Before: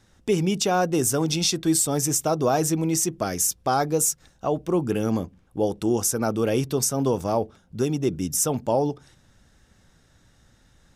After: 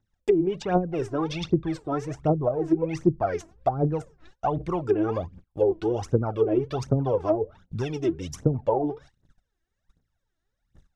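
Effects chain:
dynamic equaliser 220 Hz, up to −8 dB, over −40 dBFS, Q 2.2
phase shifter 1.3 Hz, delay 3.2 ms, feedback 78%
noise gate −43 dBFS, range −24 dB
treble cut that deepens with the level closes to 370 Hz, closed at −14 dBFS
high-shelf EQ 4,200 Hz −7.5 dB
level −1 dB

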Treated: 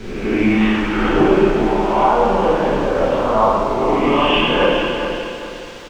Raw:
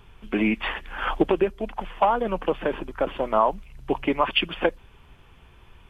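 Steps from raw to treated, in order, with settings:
peak hold with a rise ahead of every peak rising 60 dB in 0.98 s
noise gate with hold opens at −35 dBFS
low-shelf EQ 120 Hz +10 dB
in parallel at −2 dB: downward compressor, threshold −33 dBFS, peak gain reduction 20 dB
on the sum: bit-depth reduction 6 bits, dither triangular
high-frequency loss of the air 150 metres
repeating echo 416 ms, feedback 37%, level −8 dB
dense smooth reverb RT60 1.9 s, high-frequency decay 0.9×, DRR −4.5 dB
level −2.5 dB

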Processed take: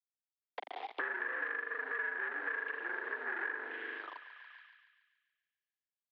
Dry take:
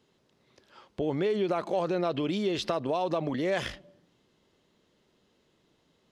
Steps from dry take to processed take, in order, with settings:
treble cut that deepens with the level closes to 420 Hz, closed at −26 dBFS
elliptic band-stop filter 350–2,500 Hz, stop band 50 dB
spring reverb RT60 1.1 s, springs 40 ms, chirp 40 ms, DRR −2 dB
leveller curve on the samples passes 5
envelope filter 620–1,600 Hz, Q 17, up, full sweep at −27 dBFS
bit-depth reduction 12 bits, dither none
single-sideband voice off tune +92 Hz 180–3,600 Hz
feedback echo with a high-pass in the loop 142 ms, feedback 60%, high-pass 1,000 Hz, level −14.5 dB
multiband upward and downward compressor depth 100%
level +8.5 dB

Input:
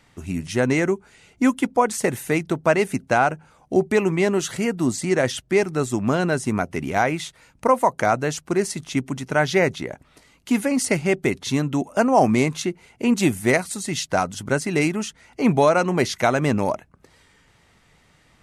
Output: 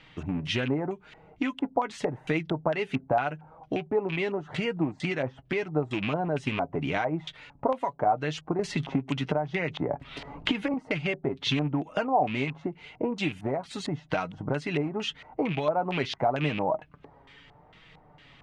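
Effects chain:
loose part that buzzes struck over −23 dBFS, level −19 dBFS
downward compressor 10 to 1, threshold −27 dBFS, peak gain reduction 16 dB
flanger 0.84 Hz, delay 6.2 ms, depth 1.2 ms, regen +36%
auto-filter low-pass square 2.2 Hz 830–3,200 Hz
0:08.59–0:10.74: multiband upward and downward compressor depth 100%
level +5 dB

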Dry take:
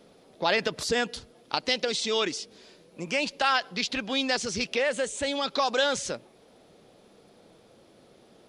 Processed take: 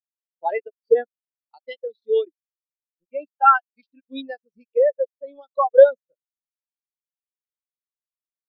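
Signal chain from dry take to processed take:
dead-zone distortion −34.5 dBFS
every bin expanded away from the loudest bin 4 to 1
level +7.5 dB

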